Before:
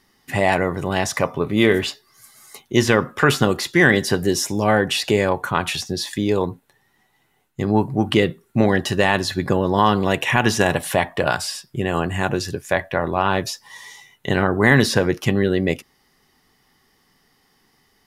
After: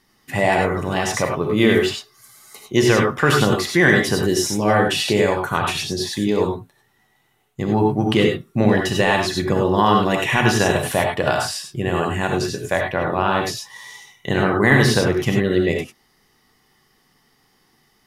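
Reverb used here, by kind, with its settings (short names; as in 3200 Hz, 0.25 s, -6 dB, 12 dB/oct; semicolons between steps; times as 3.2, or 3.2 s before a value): non-linear reverb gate 0.12 s rising, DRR 1.5 dB; gain -1.5 dB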